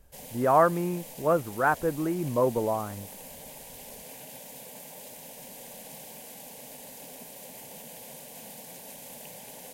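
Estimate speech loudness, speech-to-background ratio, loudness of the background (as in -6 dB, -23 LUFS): -26.5 LUFS, 16.5 dB, -43.0 LUFS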